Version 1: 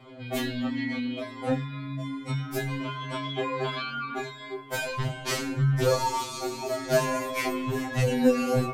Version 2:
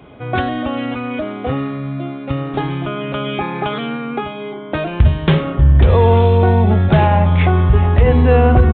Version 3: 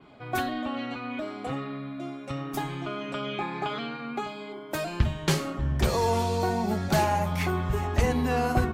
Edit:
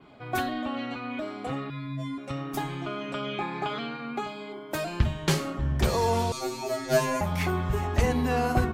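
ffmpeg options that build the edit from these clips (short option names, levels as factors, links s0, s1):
-filter_complex "[0:a]asplit=2[s0][s1];[2:a]asplit=3[s2][s3][s4];[s2]atrim=end=1.702[s5];[s0]atrim=start=1.698:end=2.182[s6];[s3]atrim=start=2.178:end=6.322[s7];[s1]atrim=start=6.318:end=7.212[s8];[s4]atrim=start=7.208[s9];[s5][s6]acrossfade=d=0.004:c1=hsin:c2=hsin[s10];[s10][s7]acrossfade=d=0.004:c1=hsin:c2=hsin[s11];[s11][s8]acrossfade=d=0.004:c1=hsin:c2=hsin[s12];[s12][s9]acrossfade=d=0.004:c1=hsin:c2=hsin"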